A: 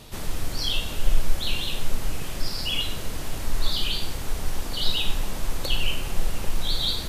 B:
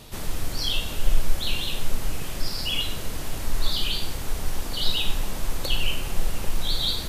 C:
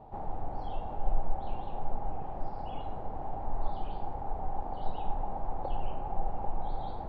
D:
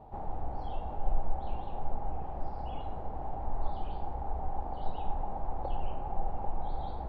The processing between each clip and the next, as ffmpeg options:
-af "highshelf=f=12k:g=3.5"
-af "lowpass=f=800:t=q:w=9.4,volume=-8.5dB"
-af "equalizer=f=60:w=4.1:g=10,volume=-1dB"

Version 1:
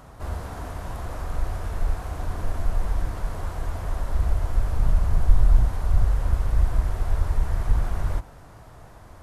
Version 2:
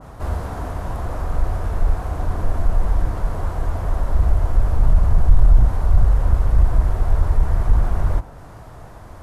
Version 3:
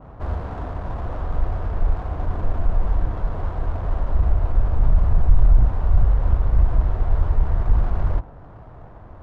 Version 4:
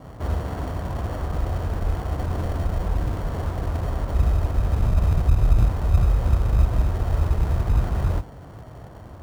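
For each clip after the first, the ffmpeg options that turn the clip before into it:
-af "acontrast=79,adynamicequalizer=threshold=0.00398:dfrequency=1600:dqfactor=0.7:tfrequency=1600:tqfactor=0.7:attack=5:release=100:ratio=0.375:range=3.5:mode=cutabove:tftype=highshelf"
-af "adynamicsmooth=sensitivity=4:basefreq=1.3k,volume=-2dB"
-filter_complex "[0:a]highpass=60,asplit=2[a][b];[b]acrusher=samples=35:mix=1:aa=0.000001,volume=-6dB[c];[a][c]amix=inputs=2:normalize=0"

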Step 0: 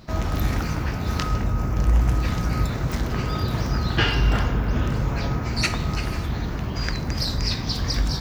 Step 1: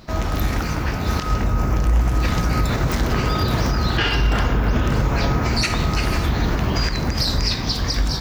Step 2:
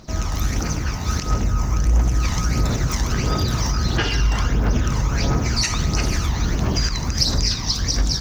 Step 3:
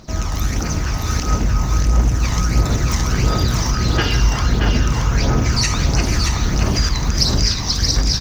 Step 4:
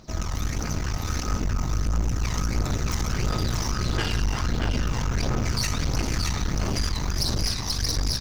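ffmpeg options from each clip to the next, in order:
-af "dynaudnorm=f=290:g=9:m=11.5dB,equalizer=f=120:w=0.69:g=-4,alimiter=limit=-14dB:level=0:latency=1:release=140,volume=4dB"
-af "equalizer=f=6.1k:t=o:w=0.54:g=13,aphaser=in_gain=1:out_gain=1:delay=1.1:decay=0.47:speed=1.5:type=triangular,volume=-5dB"
-af "aecho=1:1:626:0.596,volume=2dB"
-af "aeval=exprs='(tanh(7.08*val(0)+0.7)-tanh(0.7))/7.08':c=same,volume=-3.5dB"

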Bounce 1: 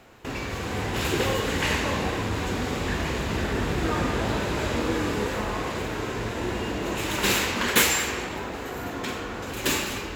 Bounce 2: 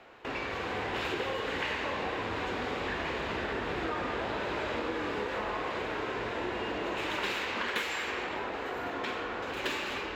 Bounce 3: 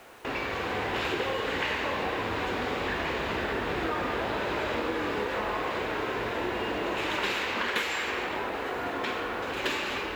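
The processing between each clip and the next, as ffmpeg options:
-filter_complex "[0:a]acrossover=split=330 4200:gain=0.251 1 0.112[a][b][c];[a][b][c]amix=inputs=3:normalize=0,acompressor=threshold=-30dB:ratio=6"
-af "acrusher=bits=9:mix=0:aa=0.000001,volume=3.5dB"

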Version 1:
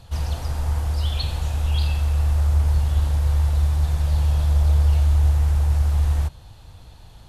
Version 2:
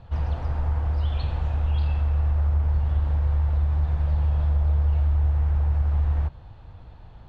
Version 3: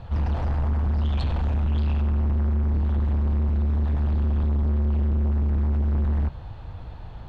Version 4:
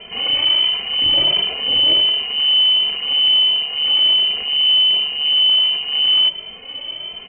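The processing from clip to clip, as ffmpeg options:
-af "lowpass=1.9k,acompressor=threshold=-20dB:ratio=2.5"
-af "asoftclip=type=tanh:threshold=-27dB,volume=7dB"
-filter_complex "[0:a]aexciter=amount=6.6:drive=9.9:freq=2.4k,lowpass=f=2.6k:t=q:w=0.5098,lowpass=f=2.6k:t=q:w=0.6013,lowpass=f=2.6k:t=q:w=0.9,lowpass=f=2.6k:t=q:w=2.563,afreqshift=-3100,asplit=2[a][b];[b]adelay=2.5,afreqshift=1.4[c];[a][c]amix=inputs=2:normalize=1,volume=8.5dB"

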